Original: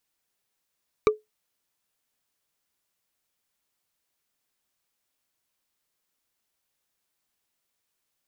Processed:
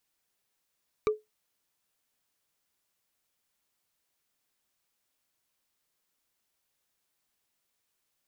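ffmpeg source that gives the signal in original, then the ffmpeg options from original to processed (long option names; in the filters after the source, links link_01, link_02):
-f lavfi -i "aevalsrc='0.266*pow(10,-3*t/0.17)*sin(2*PI*428*t)+0.158*pow(10,-3*t/0.05)*sin(2*PI*1180*t)+0.0944*pow(10,-3*t/0.022)*sin(2*PI*2312.9*t)+0.0562*pow(10,-3*t/0.012)*sin(2*PI*3823.3*t)+0.0335*pow(10,-3*t/0.008)*sin(2*PI*5709.5*t)':duration=0.45:sample_rate=44100"
-af "alimiter=limit=-18dB:level=0:latency=1:release=47"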